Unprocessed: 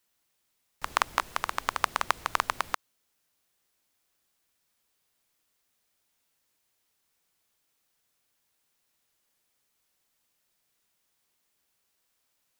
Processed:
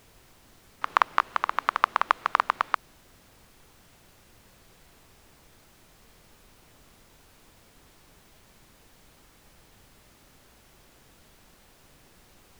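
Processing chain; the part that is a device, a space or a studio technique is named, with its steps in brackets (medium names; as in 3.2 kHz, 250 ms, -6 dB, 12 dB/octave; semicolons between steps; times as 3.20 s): horn gramophone (band-pass 220–3400 Hz; peaking EQ 1.2 kHz +5.5 dB; wow and flutter; pink noise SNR 22 dB); trim +1 dB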